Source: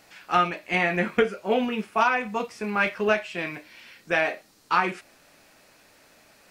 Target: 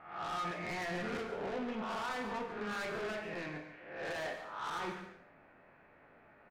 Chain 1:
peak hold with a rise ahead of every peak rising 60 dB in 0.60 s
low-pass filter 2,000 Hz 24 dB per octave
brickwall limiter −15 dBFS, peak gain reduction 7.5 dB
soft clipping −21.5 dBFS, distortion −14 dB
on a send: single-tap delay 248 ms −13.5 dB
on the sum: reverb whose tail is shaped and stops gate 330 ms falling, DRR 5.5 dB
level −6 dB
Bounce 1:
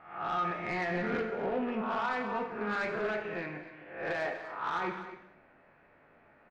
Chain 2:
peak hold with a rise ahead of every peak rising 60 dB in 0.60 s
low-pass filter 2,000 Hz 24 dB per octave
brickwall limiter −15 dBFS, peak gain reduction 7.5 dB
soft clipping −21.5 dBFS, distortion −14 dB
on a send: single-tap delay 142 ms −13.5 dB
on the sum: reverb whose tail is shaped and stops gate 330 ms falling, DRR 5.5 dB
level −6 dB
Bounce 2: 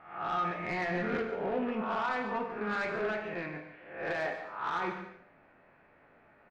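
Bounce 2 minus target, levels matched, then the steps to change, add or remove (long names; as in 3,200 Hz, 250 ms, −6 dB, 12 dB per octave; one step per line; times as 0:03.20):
soft clipping: distortion −8 dB
change: soft clipping −31.5 dBFS, distortion −6 dB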